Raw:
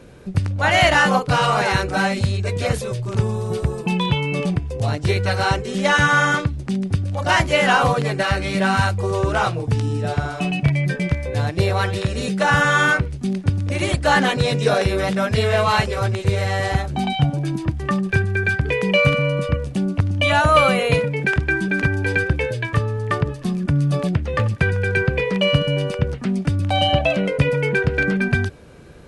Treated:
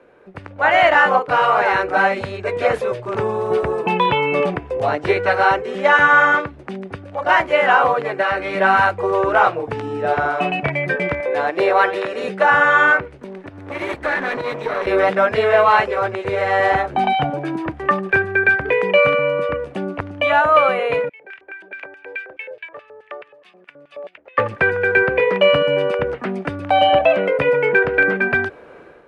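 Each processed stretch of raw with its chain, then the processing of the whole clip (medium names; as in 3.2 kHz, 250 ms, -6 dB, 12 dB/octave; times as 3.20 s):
11.20–12.24 s: high-pass 250 Hz + upward compressor, threshold -28 dBFS
13.18–14.87 s: comb filter that takes the minimum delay 0.51 ms + compression, threshold -25 dBFS
21.09–24.38 s: LFO band-pass square 4.7 Hz 590–2600 Hz + pre-emphasis filter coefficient 0.8
whole clip: three-band isolator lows -22 dB, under 340 Hz, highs -22 dB, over 2.4 kHz; level rider gain up to 12 dB; trim -1 dB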